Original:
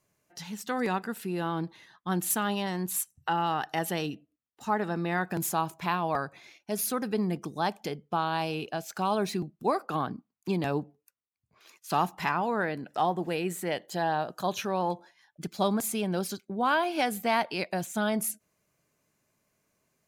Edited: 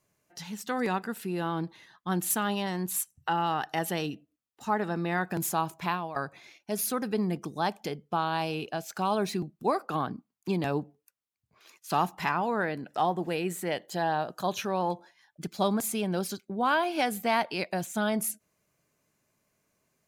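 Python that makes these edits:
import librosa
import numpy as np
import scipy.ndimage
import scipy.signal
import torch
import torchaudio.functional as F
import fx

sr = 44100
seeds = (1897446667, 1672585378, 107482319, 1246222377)

y = fx.edit(x, sr, fx.fade_out_to(start_s=5.87, length_s=0.29, floor_db=-14.0), tone=tone)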